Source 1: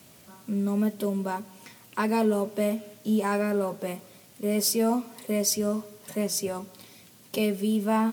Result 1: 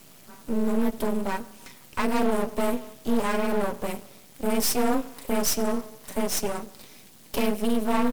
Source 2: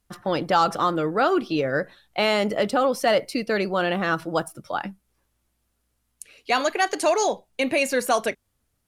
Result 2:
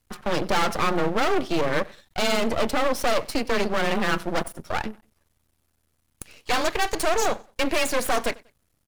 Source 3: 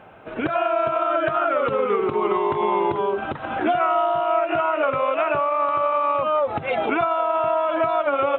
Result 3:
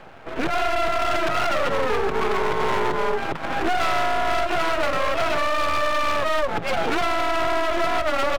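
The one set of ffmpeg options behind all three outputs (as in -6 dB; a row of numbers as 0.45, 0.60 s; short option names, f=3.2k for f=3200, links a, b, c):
-af "volume=21dB,asoftclip=hard,volume=-21dB,afreqshift=20,aecho=1:1:95|190:0.0631|0.0196,aeval=exprs='max(val(0),0)':c=same,volume=6dB"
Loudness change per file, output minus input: +0.5, -1.5, -1.0 LU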